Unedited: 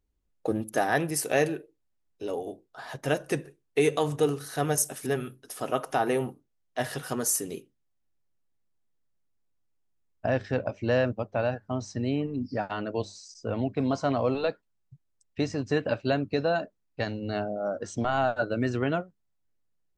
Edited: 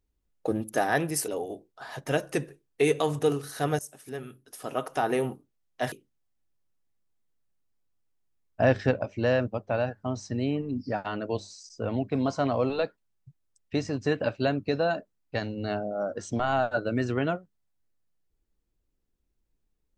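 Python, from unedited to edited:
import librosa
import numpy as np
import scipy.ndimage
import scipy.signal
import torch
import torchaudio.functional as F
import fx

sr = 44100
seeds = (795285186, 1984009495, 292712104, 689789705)

y = fx.edit(x, sr, fx.cut(start_s=1.28, length_s=0.97),
    fx.fade_in_from(start_s=4.76, length_s=1.38, floor_db=-17.0),
    fx.cut(start_s=6.89, length_s=0.68),
    fx.clip_gain(start_s=10.26, length_s=0.3, db=5.0), tone=tone)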